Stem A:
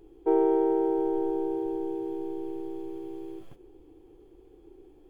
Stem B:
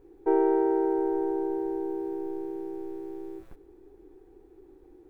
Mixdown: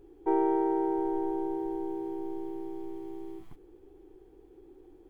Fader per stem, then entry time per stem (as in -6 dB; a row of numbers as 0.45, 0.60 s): -5.5, -3.0 dB; 0.00, 0.00 s